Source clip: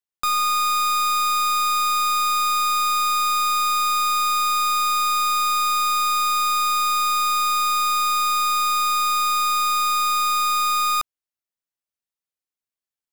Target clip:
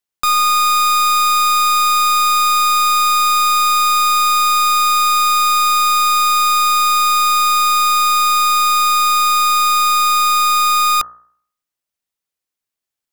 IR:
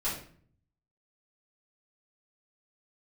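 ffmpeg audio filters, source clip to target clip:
-af "bandreject=frequency=59.1:width_type=h:width=4,bandreject=frequency=118.2:width_type=h:width=4,bandreject=frequency=177.3:width_type=h:width=4,bandreject=frequency=236.4:width_type=h:width=4,bandreject=frequency=295.5:width_type=h:width=4,bandreject=frequency=354.6:width_type=h:width=4,bandreject=frequency=413.7:width_type=h:width=4,bandreject=frequency=472.8:width_type=h:width=4,bandreject=frequency=531.9:width_type=h:width=4,bandreject=frequency=591:width_type=h:width=4,bandreject=frequency=650.1:width_type=h:width=4,bandreject=frequency=709.2:width_type=h:width=4,bandreject=frequency=768.3:width_type=h:width=4,bandreject=frequency=827.4:width_type=h:width=4,bandreject=frequency=886.5:width_type=h:width=4,bandreject=frequency=945.6:width_type=h:width=4,bandreject=frequency=1004.7:width_type=h:width=4,bandreject=frequency=1063.8:width_type=h:width=4,bandreject=frequency=1122.9:width_type=h:width=4,bandreject=frequency=1182:width_type=h:width=4,bandreject=frequency=1241.1:width_type=h:width=4,bandreject=frequency=1300.2:width_type=h:width=4,bandreject=frequency=1359.3:width_type=h:width=4,bandreject=frequency=1418.4:width_type=h:width=4,bandreject=frequency=1477.5:width_type=h:width=4,bandreject=frequency=1536.6:width_type=h:width=4,bandreject=frequency=1595.7:width_type=h:width=4,bandreject=frequency=1654.8:width_type=h:width=4,bandreject=frequency=1713.9:width_type=h:width=4,bandreject=frequency=1773:width_type=h:width=4,bandreject=frequency=1832.1:width_type=h:width=4,volume=7dB"

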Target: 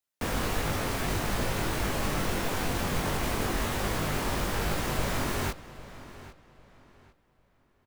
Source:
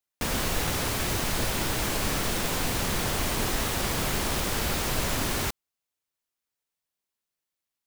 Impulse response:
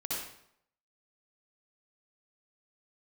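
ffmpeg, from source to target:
-filter_complex "[0:a]acrossover=split=250|760|2300[link_01][link_02][link_03][link_04];[link_04]alimiter=level_in=6dB:limit=-24dB:level=0:latency=1,volume=-6dB[link_05];[link_01][link_02][link_03][link_05]amix=inputs=4:normalize=0,flanger=delay=19.5:depth=2.2:speed=1.5,asplit=2[link_06][link_07];[link_07]adelay=800,lowpass=frequency=4900:poles=1,volume=-16dB,asplit=2[link_08][link_09];[link_09]adelay=800,lowpass=frequency=4900:poles=1,volume=0.29,asplit=2[link_10][link_11];[link_11]adelay=800,lowpass=frequency=4900:poles=1,volume=0.29[link_12];[link_06][link_08][link_10][link_12]amix=inputs=4:normalize=0,volume=2.5dB"

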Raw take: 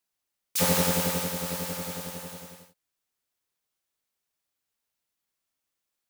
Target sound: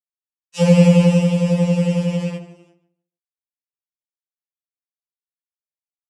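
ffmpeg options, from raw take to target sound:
ffmpeg -i in.wav -filter_complex "[0:a]bandreject=frequency=60:width_type=h:width=6,bandreject=frequency=120:width_type=h:width=6,bandreject=frequency=180:width_type=h:width=6,bandreject=frequency=240:width_type=h:width=6,bandreject=frequency=300:width_type=h:width=6,bandreject=frequency=360:width_type=h:width=6,bandreject=frequency=420:width_type=h:width=6,bandreject=frequency=480:width_type=h:width=6,bandreject=frequency=540:width_type=h:width=6,bandreject=frequency=600:width_type=h:width=6,agate=range=-10dB:threshold=-40dB:ratio=16:detection=peak,equalizer=frequency=220:width=1.8:gain=4,acrossover=split=850[link_01][link_02];[link_01]dynaudnorm=framelen=100:gausssize=11:maxgain=16dB[link_03];[link_03][link_02]amix=inputs=2:normalize=0,acrusher=bits=6:dc=4:mix=0:aa=0.000001,highpass=170,equalizer=frequency=1000:width_type=q:width=4:gain=4,equalizer=frequency=2700:width_type=q:width=4:gain=9,equalizer=frequency=4400:width_type=q:width=4:gain=-4,lowpass=frequency=7800:width=0.5412,lowpass=frequency=7800:width=1.3066,asplit=2[link_04][link_05];[link_05]adelay=12,volume=-5dB[link_06];[link_04][link_06]amix=inputs=2:normalize=0,asplit=2[link_07][link_08];[link_08]adelay=147,lowpass=frequency=2400:poles=1,volume=-13dB,asplit=2[link_09][link_10];[link_10]adelay=147,lowpass=frequency=2400:poles=1,volume=0.23,asplit=2[link_11][link_12];[link_12]adelay=147,lowpass=frequency=2400:poles=1,volume=0.23[link_13];[link_07][link_09][link_11][link_13]amix=inputs=4:normalize=0,afftfilt=real='re*2.83*eq(mod(b,8),0)':imag='im*2.83*eq(mod(b,8),0)':win_size=2048:overlap=0.75,volume=-1dB" out.wav

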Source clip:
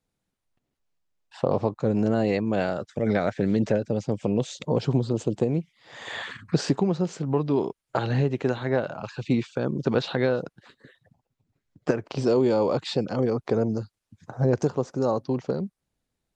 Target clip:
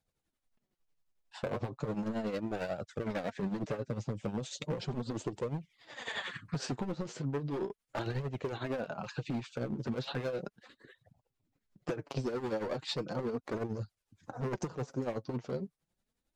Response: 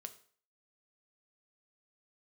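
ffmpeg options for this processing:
-af "asoftclip=type=hard:threshold=-22.5dB,tremolo=f=11:d=0.65,flanger=delay=1.2:depth=8.3:regen=27:speed=0.36:shape=triangular,acompressor=threshold=-35dB:ratio=6,volume=3dB"

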